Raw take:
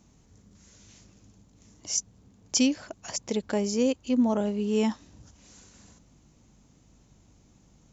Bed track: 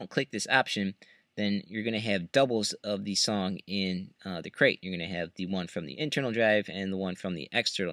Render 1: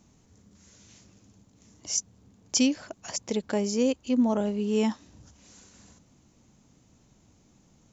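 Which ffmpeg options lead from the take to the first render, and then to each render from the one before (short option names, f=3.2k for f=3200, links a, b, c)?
-af "bandreject=f=50:t=h:w=4,bandreject=f=100:t=h:w=4,bandreject=f=150:t=h:w=4"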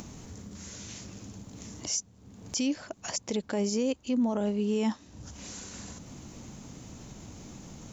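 -af "acompressor=mode=upward:threshold=-31dB:ratio=2.5,alimiter=limit=-20.5dB:level=0:latency=1:release=24"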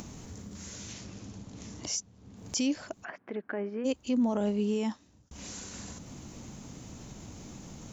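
-filter_complex "[0:a]asettb=1/sr,asplit=3[a][b][c];[a]atrim=end=0.934[d];[b]atrim=start=0.93:end=2.37,asetpts=PTS-STARTPTS,afade=t=in:d=0.004:c=qsin,afade=t=out:st=1.436:d=0.004:c=qsin,lowpass=6.5k[e];[c]atrim=start=2.366[f];[d][e]acrossfade=d=0.004:c1=hsin:c2=qsin[g];[g][f]acrossfade=d=0.004:c1=qsin:c2=hsin,asplit=3[h][i][j];[h]afade=t=out:st=3.03:d=0.02[k];[i]highpass=320,equalizer=f=520:t=q:w=4:g=-8,equalizer=f=910:t=q:w=4:g=-7,equalizer=f=1.6k:t=q:w=4:g=6,lowpass=f=2k:w=0.5412,lowpass=f=2k:w=1.3066,afade=t=in:st=3.03:d=0.02,afade=t=out:st=3.84:d=0.02[l];[j]afade=t=in:st=3.84:d=0.02[m];[k][l][m]amix=inputs=3:normalize=0,asplit=2[n][o];[n]atrim=end=5.31,asetpts=PTS-STARTPTS,afade=t=out:st=4.63:d=0.68[p];[o]atrim=start=5.31,asetpts=PTS-STARTPTS,afade=t=in:d=0.004:c=hsin[q];[p][q]concat=n=2:v=0:a=1"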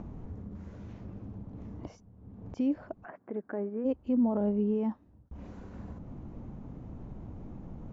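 -af "lowpass=1k,lowshelf=f=60:g=11.5"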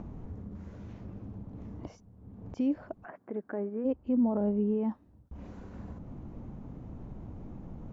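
-filter_complex "[0:a]asettb=1/sr,asplit=3[a][b][c];[a]atrim=end=3.864[d];[b]atrim=start=3.86:end=4.88,asetpts=PTS-STARTPTS,afade=t=in:d=0.004:c=qsin,afade=t=out:st=1.016:d=0.004:c=qsin,lowpass=f=2.4k:p=1[e];[c]atrim=start=4.876[f];[d][e]acrossfade=d=0.004:c1=hsin:c2=qsin[g];[g][f]acrossfade=d=0.004:c1=qsin:c2=hsin"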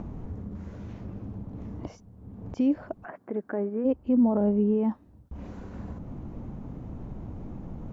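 -af "volume=5dB"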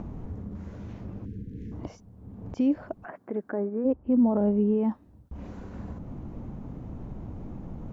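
-filter_complex "[0:a]asettb=1/sr,asplit=3[a][b][c];[a]atrim=end=1.254[d];[b]atrim=start=1.25:end=1.72,asetpts=PTS-STARTPTS,afade=t=in:d=0.004:c=qsin,afade=t=out:st=0.466:d=0.004:c=qsin,asuperstop=centerf=880:order=20:qfactor=0.83[e];[c]atrim=start=1.716[f];[d][e]acrossfade=d=0.004:c1=hsin:c2=qsin[g];[g][f]acrossfade=d=0.004:c1=qsin:c2=hsin,asettb=1/sr,asplit=3[h][i][j];[h]atrim=end=3.514[k];[i]atrim=start=3.51:end=4.12,asetpts=PTS-STARTPTS,afade=t=in:d=0.004:c=qsin,afade=t=out:st=0.606:d=0.004:c=qsin,lowpass=1.8k[l];[j]atrim=start=4.116[m];[k][l]acrossfade=d=0.004:c1=hsin:c2=qsin[n];[n][m]acrossfade=d=0.004:c1=qsin:c2=hsin"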